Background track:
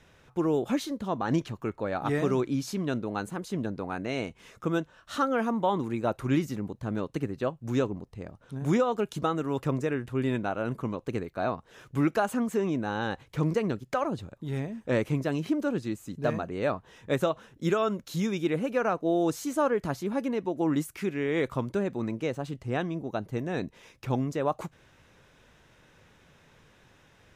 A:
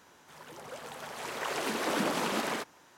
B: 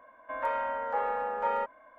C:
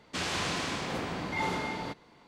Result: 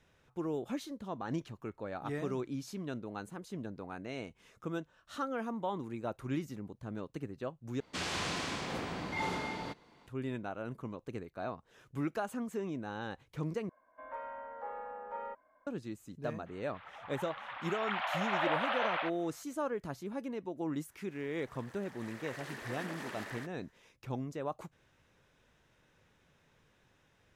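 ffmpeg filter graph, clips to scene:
-filter_complex "[1:a]asplit=2[a][b];[0:a]volume=-10dB[c];[2:a]highshelf=f=2.6k:g=-9.5[d];[a]highpass=f=210:t=q:w=0.5412,highpass=f=210:t=q:w=1.307,lowpass=f=3.1k:t=q:w=0.5176,lowpass=f=3.1k:t=q:w=0.7071,lowpass=f=3.1k:t=q:w=1.932,afreqshift=330[e];[b]equalizer=f=1.8k:t=o:w=0.39:g=11.5[f];[c]asplit=3[g][h][i];[g]atrim=end=7.804[j];[3:a]atrim=end=2.27,asetpts=PTS-STARTPTS,volume=-4dB[k];[h]atrim=start=10.066:end=13.694[l];[d]atrim=end=1.98,asetpts=PTS-STARTPTS,volume=-11.5dB[m];[i]atrim=start=15.666[n];[e]atrim=end=2.97,asetpts=PTS-STARTPTS,volume=-1.5dB,afade=t=in:d=0.004:c=hsin,afade=t=out:st=2.966:d=0.004:c=hsin,adelay=16460[o];[f]atrim=end=2.97,asetpts=PTS-STARTPTS,volume=-15dB,afade=t=in:d=0.1,afade=t=out:st=2.87:d=0.1,adelay=20830[p];[j][k]acrossfade=d=0.004:c1=hsin:c2=hsin[q];[q][l]acrossfade=d=0.004:c1=hsin:c2=hsin[r];[r][m]acrossfade=d=0.004:c1=hsin:c2=hsin[s];[s][n]acrossfade=d=0.004:c1=hsin:c2=hsin[t];[t][o][p]amix=inputs=3:normalize=0"

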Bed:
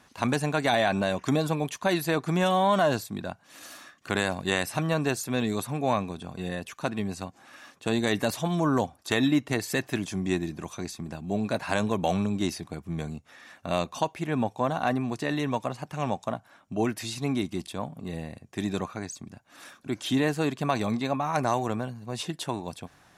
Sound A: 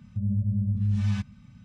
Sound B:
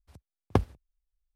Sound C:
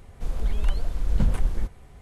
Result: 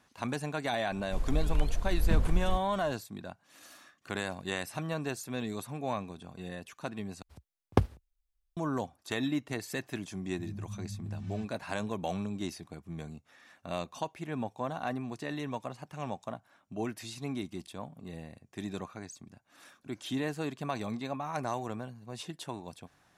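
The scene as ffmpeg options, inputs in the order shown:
-filter_complex "[0:a]volume=-8.5dB,asplit=2[a][b];[a]atrim=end=7.224[c];[2:a]atrim=end=1.35,asetpts=PTS-STARTPTS,volume=-0.5dB[d];[b]atrim=start=8.566[e];[3:a]atrim=end=2.01,asetpts=PTS-STARTPTS,volume=-4.5dB,afade=t=in:d=0.004:c=hsin,afade=t=out:st=2.006:d=0.004:c=hsin,adelay=910[f];[1:a]atrim=end=1.64,asetpts=PTS-STARTPTS,volume=-15dB,afade=t=in:d=0.004:c=hsin,afade=t=out:st=1.636:d=0.004:c=hsin,adelay=10230[g];[c][d]acrossfade=d=0.004:c1=hsin:c2=hsin[h];[h][e]acrossfade=d=0.004:c1=hsin:c2=hsin[i];[i][f][g]amix=inputs=3:normalize=0"

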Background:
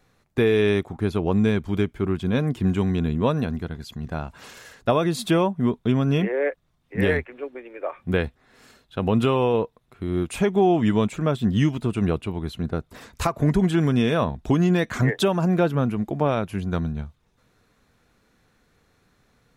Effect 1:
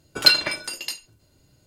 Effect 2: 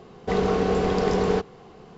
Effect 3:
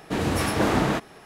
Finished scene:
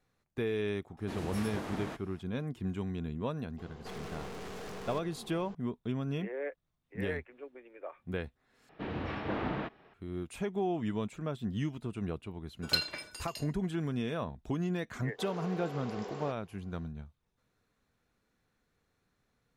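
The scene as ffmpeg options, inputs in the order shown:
-filter_complex "[3:a]asplit=2[a][b];[2:a]asplit=2[c][d];[0:a]volume=-14dB[e];[a]alimiter=limit=-14dB:level=0:latency=1:release=357[f];[c]aeval=exprs='(tanh(112*val(0)+0.55)-tanh(0.55))/112':c=same[g];[b]lowpass=f=3.4k:w=0.5412,lowpass=f=3.4k:w=1.3066[h];[1:a]aecho=1:1:81:0.0944[i];[d]highpass=430[j];[e]asplit=2[k][l];[k]atrim=end=8.694[m];[h]atrim=end=1.25,asetpts=PTS-STARTPTS,volume=-12.5dB[n];[l]atrim=start=9.936[o];[f]atrim=end=1.25,asetpts=PTS-STARTPTS,volume=-15dB,afade=t=in:d=0.004:c=hsin,afade=t=out:st=1.246:d=0.004:c=hsin,adelay=970[p];[g]atrim=end=1.97,asetpts=PTS-STARTPTS,volume=-2dB,afade=t=in:d=0.004:c=hsin,afade=t=out:st=1.966:d=0.004:c=hsin,adelay=3580[q];[i]atrim=end=1.66,asetpts=PTS-STARTPTS,volume=-15dB,afade=t=in:d=0.004:c=hsin,afade=t=out:st=1.656:d=0.004:c=hsin,adelay=12470[r];[j]atrim=end=1.97,asetpts=PTS-STARTPTS,volume=-16.5dB,afade=t=in:d=0.004:c=hsin,afade=t=out:st=1.966:d=0.004:c=hsin,adelay=14910[s];[m][n]acrossfade=d=0.004:c1=hsin:c2=hsin[t];[t][o]acrossfade=d=0.004:c1=hsin:c2=hsin[u];[u][p][q][r][s]amix=inputs=5:normalize=0"

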